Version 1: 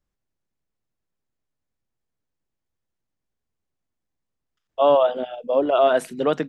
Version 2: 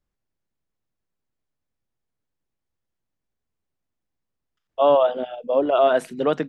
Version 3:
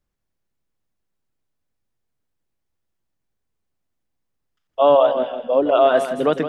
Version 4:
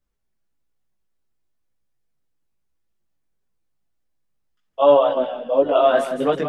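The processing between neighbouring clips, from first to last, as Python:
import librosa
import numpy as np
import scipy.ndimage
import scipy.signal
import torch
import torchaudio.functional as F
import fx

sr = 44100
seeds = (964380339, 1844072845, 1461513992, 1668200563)

y1 = fx.high_shelf(x, sr, hz=6000.0, db=-6.0)
y2 = fx.echo_feedback(y1, sr, ms=163, feedback_pct=30, wet_db=-9.5)
y2 = y2 * 10.0 ** (2.5 / 20.0)
y3 = fx.chorus_voices(y2, sr, voices=4, hz=0.4, base_ms=18, depth_ms=3.6, mix_pct=50)
y3 = y3 * 10.0 ** (2.0 / 20.0)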